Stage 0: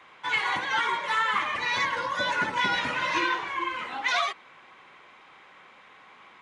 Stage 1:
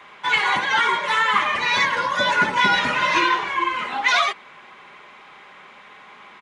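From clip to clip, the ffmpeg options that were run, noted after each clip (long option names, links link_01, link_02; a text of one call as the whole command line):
ffmpeg -i in.wav -af "aecho=1:1:4.9:0.32,volume=7dB" out.wav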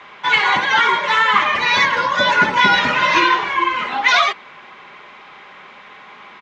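ffmpeg -i in.wav -af "lowpass=frequency=6400:width=0.5412,lowpass=frequency=6400:width=1.3066,volume=4.5dB" out.wav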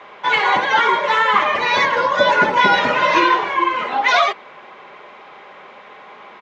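ffmpeg -i in.wav -af "equalizer=frequency=540:width=0.83:gain=10.5,volume=-4dB" out.wav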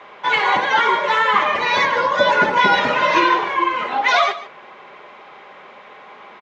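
ffmpeg -i in.wav -af "aecho=1:1:147:0.168,volume=-1dB" out.wav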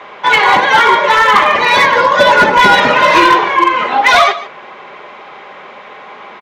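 ffmpeg -i in.wav -af "asoftclip=type=hard:threshold=-10.5dB,volume=8.5dB" out.wav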